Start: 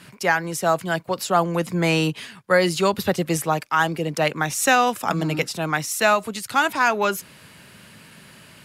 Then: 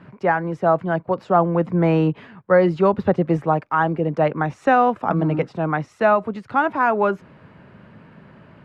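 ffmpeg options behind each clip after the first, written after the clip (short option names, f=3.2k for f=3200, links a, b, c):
-af "lowpass=1.1k,volume=4dB"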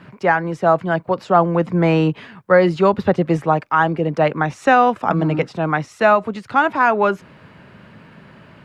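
-af "highshelf=f=2.4k:g=11,volume=1.5dB"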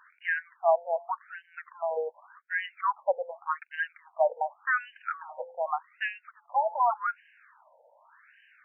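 -af "bandreject=f=171.4:t=h:w=4,bandreject=f=342.8:t=h:w=4,bandreject=f=514.2:t=h:w=4,bandreject=f=685.6:t=h:w=4,bandreject=f=857:t=h:w=4,afftfilt=real='re*between(b*sr/1024,650*pow(2200/650,0.5+0.5*sin(2*PI*0.86*pts/sr))/1.41,650*pow(2200/650,0.5+0.5*sin(2*PI*0.86*pts/sr))*1.41)':imag='im*between(b*sr/1024,650*pow(2200/650,0.5+0.5*sin(2*PI*0.86*pts/sr))/1.41,650*pow(2200/650,0.5+0.5*sin(2*PI*0.86*pts/sr))*1.41)':win_size=1024:overlap=0.75,volume=-6.5dB"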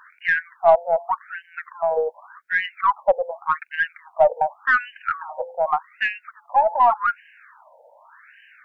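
-af "aeval=exprs='0.237*(cos(1*acos(clip(val(0)/0.237,-1,1)))-cos(1*PI/2))+0.00596*(cos(4*acos(clip(val(0)/0.237,-1,1)))-cos(4*PI/2))+0.00422*(cos(5*acos(clip(val(0)/0.237,-1,1)))-cos(5*PI/2))':c=same,volume=8.5dB"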